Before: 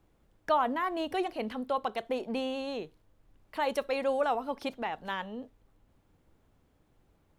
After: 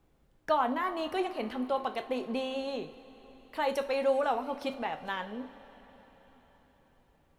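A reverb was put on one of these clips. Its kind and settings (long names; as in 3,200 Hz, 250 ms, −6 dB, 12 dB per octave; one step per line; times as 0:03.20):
coupled-rooms reverb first 0.34 s, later 4.9 s, from −18 dB, DRR 7 dB
level −1 dB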